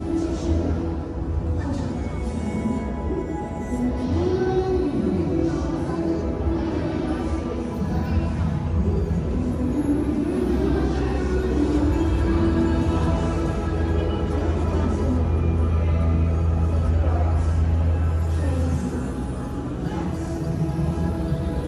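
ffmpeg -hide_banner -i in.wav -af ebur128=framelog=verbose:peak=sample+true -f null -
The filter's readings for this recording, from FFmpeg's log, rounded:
Integrated loudness:
  I:         -23.7 LUFS
  Threshold: -33.7 LUFS
Loudness range:
  LRA:         3.8 LU
  Threshold: -43.5 LUFS
  LRA low:   -25.8 LUFS
  LRA high:  -21.9 LUFS
Sample peak:
  Peak:      -12.5 dBFS
True peak:
  Peak:      -12.5 dBFS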